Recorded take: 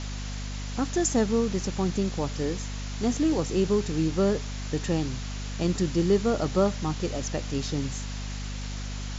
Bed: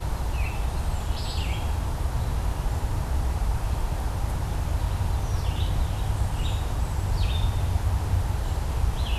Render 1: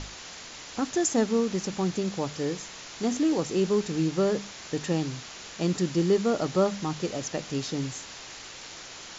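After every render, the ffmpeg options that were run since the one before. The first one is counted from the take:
ffmpeg -i in.wav -af "bandreject=frequency=50:width_type=h:width=6,bandreject=frequency=100:width_type=h:width=6,bandreject=frequency=150:width_type=h:width=6,bandreject=frequency=200:width_type=h:width=6,bandreject=frequency=250:width_type=h:width=6" out.wav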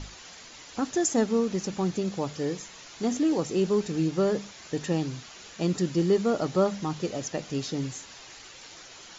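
ffmpeg -i in.wav -af "afftdn=noise_reduction=7:noise_floor=-43" out.wav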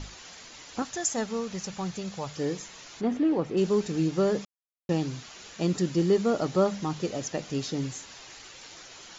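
ffmpeg -i in.wav -filter_complex "[0:a]asettb=1/sr,asplit=3[link_01][link_02][link_03];[link_01]atrim=end=0.824[link_04];[link_02]atrim=start=0.82:end=2.37,asetpts=PTS-STARTPTS,afade=type=in:duration=0.004:curve=qsin,afade=type=out:start_time=1.546:duration=0.004:curve=qsin,equalizer=frequency=310:width=1.2:gain=-12.5[link_05];[link_03]atrim=start=2.366[link_06];[link_04][link_05]acrossfade=duration=0.004:curve1=hsin:curve2=qsin[link_07];[link_07][link_06]acrossfade=duration=0.004:curve1=qsin:curve2=hsin,asplit=3[link_08][link_09][link_10];[link_08]afade=type=out:start_time=3:duration=0.02[link_11];[link_09]lowpass=2400,afade=type=in:start_time=3:duration=0.02,afade=type=out:start_time=3.56:duration=0.02[link_12];[link_10]afade=type=in:start_time=3.56:duration=0.02[link_13];[link_11][link_12][link_13]amix=inputs=3:normalize=0,asplit=3[link_14][link_15][link_16];[link_14]atrim=end=4.45,asetpts=PTS-STARTPTS,afade=type=out:start_time=4.446:duration=0.004:curve=hsin[link_17];[link_15]atrim=start=4.45:end=4.89,asetpts=PTS-STARTPTS,volume=0[link_18];[link_16]atrim=start=4.89,asetpts=PTS-STARTPTS,afade=type=in:duration=0.004:curve=hsin[link_19];[link_17][link_18][link_19]concat=n=3:v=0:a=1" out.wav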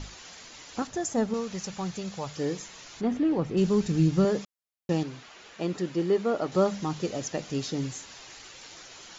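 ffmpeg -i in.wav -filter_complex "[0:a]asettb=1/sr,asplit=3[link_01][link_02][link_03];[link_01]atrim=end=0.874[link_04];[link_02]atrim=start=0.87:end=1.34,asetpts=PTS-STARTPTS,afade=type=in:duration=0.004:curve=qsin,afade=type=out:start_time=0.466:duration=0.004:curve=qsin,tiltshelf=frequency=970:gain=6.5[link_05];[link_03]atrim=start=1.336[link_06];[link_04][link_05]acrossfade=duration=0.004:curve1=hsin:curve2=qsin[link_07];[link_07][link_06]acrossfade=duration=0.004:curve1=qsin:curve2=hsin,asettb=1/sr,asplit=3[link_08][link_09][link_10];[link_08]atrim=end=2.734[link_11];[link_09]atrim=start=2.73:end=4.25,asetpts=PTS-STARTPTS,afade=type=in:duration=0.004:curve=qsin,afade=type=out:start_time=1.516:duration=0.004:curve=qsin,asubboost=boost=7.5:cutoff=210[link_12];[link_10]atrim=start=4.246[link_13];[link_11][link_12]acrossfade=duration=0.004:curve1=hsin:curve2=qsin[link_14];[link_14][link_13]acrossfade=duration=0.004:curve1=qsin:curve2=hsin,asettb=1/sr,asplit=3[link_15][link_16][link_17];[link_15]atrim=end=5.034[link_18];[link_16]atrim=start=5.03:end=6.52,asetpts=PTS-STARTPTS,afade=type=in:duration=0.004:curve=qsin,afade=type=out:start_time=1.486:duration=0.004:curve=qsin,bass=frequency=250:gain=-8,treble=frequency=4000:gain=-10[link_19];[link_17]atrim=start=6.516[link_20];[link_18][link_19]acrossfade=duration=0.004:curve1=hsin:curve2=qsin[link_21];[link_21][link_20]acrossfade=duration=0.004:curve1=qsin:curve2=hsin" out.wav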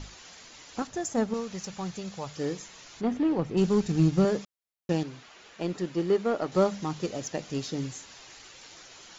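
ffmpeg -i in.wav -af "aeval=exprs='0.266*(cos(1*acos(clip(val(0)/0.266,-1,1)))-cos(1*PI/2))+0.00188*(cos(5*acos(clip(val(0)/0.266,-1,1)))-cos(5*PI/2))+0.0106*(cos(7*acos(clip(val(0)/0.266,-1,1)))-cos(7*PI/2))':channel_layout=same" out.wav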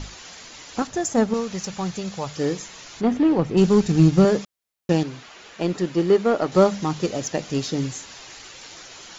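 ffmpeg -i in.wav -af "volume=7.5dB" out.wav

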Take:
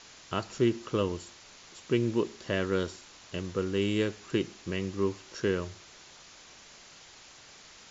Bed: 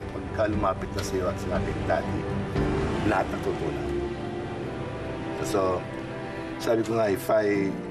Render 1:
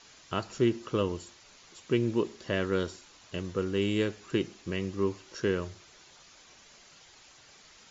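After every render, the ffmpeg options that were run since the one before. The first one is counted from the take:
ffmpeg -i in.wav -af "afftdn=noise_reduction=6:noise_floor=-53" out.wav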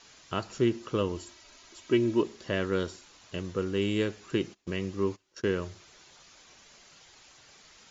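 ffmpeg -i in.wav -filter_complex "[0:a]asettb=1/sr,asplit=3[link_01][link_02][link_03];[link_01]atrim=end=1.164[link_04];[link_02]atrim=start=1.16:end=2.22,asetpts=PTS-STARTPTS,afade=type=in:duration=0.004:curve=qsin,afade=type=out:start_time=1.056:duration=0.004:curve=qsin,aecho=1:1:3.1:0.62,atrim=end_sample=46746[link_05];[link_03]atrim=start=2.216[link_06];[link_04][link_05]acrossfade=duration=0.004:curve1=hsin:curve2=qsin[link_07];[link_07][link_06]acrossfade=duration=0.004:curve1=qsin:curve2=hsin,asplit=3[link_08][link_09][link_10];[link_08]afade=type=out:start_time=4.53:duration=0.02[link_11];[link_09]agate=range=-21dB:threshold=-43dB:ratio=16:release=100:detection=peak,afade=type=in:start_time=4.53:duration=0.02,afade=type=out:start_time=5.6:duration=0.02[link_12];[link_10]afade=type=in:start_time=5.6:duration=0.02[link_13];[link_11][link_12][link_13]amix=inputs=3:normalize=0" out.wav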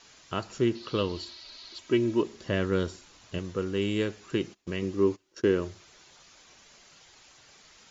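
ffmpeg -i in.wav -filter_complex "[0:a]asettb=1/sr,asplit=3[link_01][link_02][link_03];[link_01]atrim=end=0.754[link_04];[link_02]atrim=start=0.75:end=1.79,asetpts=PTS-STARTPTS,afade=type=in:duration=0.004:curve=qsin,afade=type=out:start_time=1.036:duration=0.004:curve=qsin,lowpass=frequency=4300:width_type=q:width=5.8[link_05];[link_03]atrim=start=1.786[link_06];[link_04][link_05]acrossfade=duration=0.004:curve1=hsin:curve2=qsin[link_07];[link_07][link_06]acrossfade=duration=0.004:curve1=qsin:curve2=hsin,asettb=1/sr,asplit=3[link_08][link_09][link_10];[link_08]atrim=end=2.334[link_11];[link_09]atrim=start=2.33:end=3.39,asetpts=PTS-STARTPTS,afade=type=in:duration=0.004:curve=qsin,afade=type=out:start_time=1.056:duration=0.004:curve=qsin,lowshelf=frequency=240:gain=6[link_12];[link_10]atrim=start=3.386[link_13];[link_11][link_12]acrossfade=duration=0.004:curve1=hsin:curve2=qsin[link_14];[link_14][link_13]acrossfade=duration=0.004:curve1=qsin:curve2=hsin,asettb=1/sr,asplit=3[link_15][link_16][link_17];[link_15]atrim=end=4.824[link_18];[link_16]atrim=start=4.82:end=5.71,asetpts=PTS-STARTPTS,afade=type=in:duration=0.004:curve=qsin,afade=type=out:start_time=0.886:duration=0.004:curve=qsin,equalizer=frequency=330:width_type=o:width=0.95:gain=7[link_19];[link_17]atrim=start=5.706[link_20];[link_18][link_19]acrossfade=duration=0.004:curve1=hsin:curve2=qsin[link_21];[link_21][link_20]acrossfade=duration=0.004:curve1=qsin:curve2=hsin" out.wav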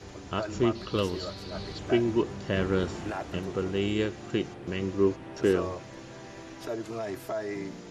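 ffmpeg -i in.wav -i bed.wav -filter_complex "[1:a]volume=-10.5dB[link_01];[0:a][link_01]amix=inputs=2:normalize=0" out.wav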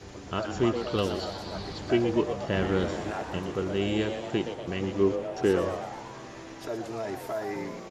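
ffmpeg -i in.wav -filter_complex "[0:a]asplit=8[link_01][link_02][link_03][link_04][link_05][link_06][link_07][link_08];[link_02]adelay=120,afreqshift=120,volume=-9dB[link_09];[link_03]adelay=240,afreqshift=240,volume=-13.6dB[link_10];[link_04]adelay=360,afreqshift=360,volume=-18.2dB[link_11];[link_05]adelay=480,afreqshift=480,volume=-22.7dB[link_12];[link_06]adelay=600,afreqshift=600,volume=-27.3dB[link_13];[link_07]adelay=720,afreqshift=720,volume=-31.9dB[link_14];[link_08]adelay=840,afreqshift=840,volume=-36.5dB[link_15];[link_01][link_09][link_10][link_11][link_12][link_13][link_14][link_15]amix=inputs=8:normalize=0" out.wav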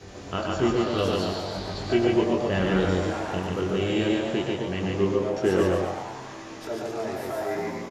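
ffmpeg -i in.wav -filter_complex "[0:a]asplit=2[link_01][link_02];[link_02]adelay=22,volume=-5dB[link_03];[link_01][link_03]amix=inputs=2:normalize=0,aecho=1:1:99.13|142.9|262.4:0.355|0.794|0.355" out.wav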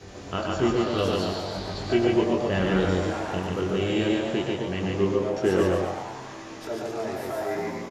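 ffmpeg -i in.wav -af anull out.wav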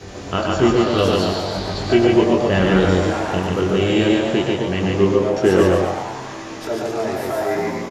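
ffmpeg -i in.wav -af "volume=8dB,alimiter=limit=-3dB:level=0:latency=1" out.wav

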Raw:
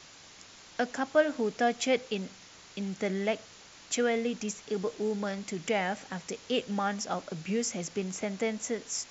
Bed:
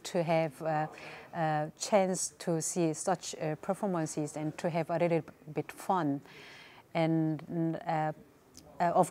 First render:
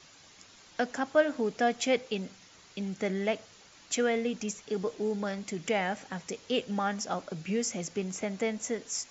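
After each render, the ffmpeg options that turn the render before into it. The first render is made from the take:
ffmpeg -i in.wav -af "afftdn=noise_reduction=6:noise_floor=-53" out.wav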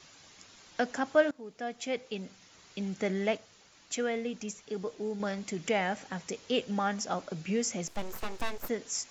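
ffmpeg -i in.wav -filter_complex "[0:a]asplit=3[link_01][link_02][link_03];[link_01]afade=type=out:start_time=7.87:duration=0.02[link_04];[link_02]aeval=exprs='abs(val(0))':channel_layout=same,afade=type=in:start_time=7.87:duration=0.02,afade=type=out:start_time=8.68:duration=0.02[link_05];[link_03]afade=type=in:start_time=8.68:duration=0.02[link_06];[link_04][link_05][link_06]amix=inputs=3:normalize=0,asplit=4[link_07][link_08][link_09][link_10];[link_07]atrim=end=1.31,asetpts=PTS-STARTPTS,afade=type=out:start_time=1.306:duration=0.004:curve=hsin:silence=0.112202[link_11];[link_08]atrim=start=1.31:end=3.372,asetpts=PTS-STARTPTS,afade=type=in:duration=1.54:silence=0.112202[link_12];[link_09]atrim=start=3.368:end=5.202,asetpts=PTS-STARTPTS,volume=-4dB[link_13];[link_10]atrim=start=5.198[link_14];[link_11][link_12]concat=n=2:v=0:a=1[link_15];[link_15][link_13]acrossfade=duration=0.004:curve1=hsin:curve2=hsin[link_16];[link_16][link_14]acrossfade=duration=0.004:curve1=hsin:curve2=hsin" out.wav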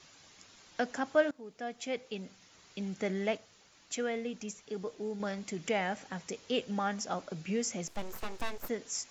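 ffmpeg -i in.wav -af "volume=-2.5dB" out.wav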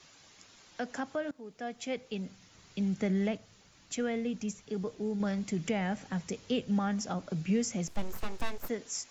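ffmpeg -i in.wav -filter_complex "[0:a]acrossover=split=210[link_01][link_02];[link_01]dynaudnorm=framelen=780:gausssize=5:maxgain=11dB[link_03];[link_02]alimiter=level_in=1.5dB:limit=-24dB:level=0:latency=1:release=188,volume=-1.5dB[link_04];[link_03][link_04]amix=inputs=2:normalize=0" out.wav

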